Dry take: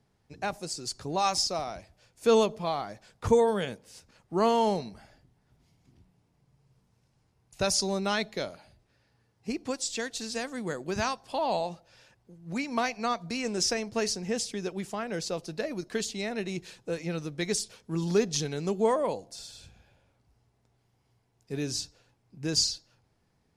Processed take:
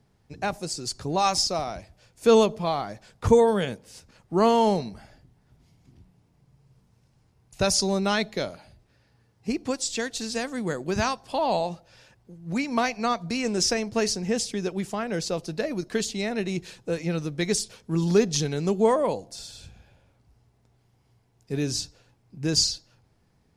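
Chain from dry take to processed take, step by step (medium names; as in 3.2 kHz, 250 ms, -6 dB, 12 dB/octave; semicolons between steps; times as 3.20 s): bass shelf 260 Hz +4 dB; trim +3.5 dB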